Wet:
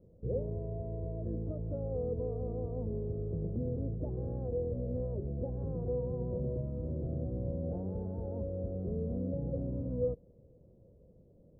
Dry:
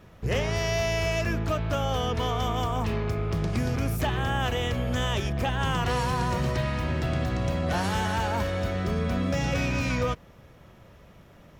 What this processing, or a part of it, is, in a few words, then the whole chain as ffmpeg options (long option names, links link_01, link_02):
under water: -af "lowpass=frequency=490:width=0.5412,lowpass=frequency=490:width=1.3066,equalizer=frequency=500:width_type=o:width=0.34:gain=10,volume=-8.5dB"